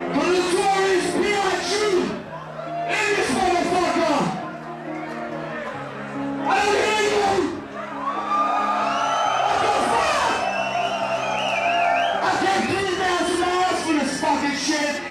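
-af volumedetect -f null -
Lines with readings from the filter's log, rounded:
mean_volume: -21.8 dB
max_volume: -8.7 dB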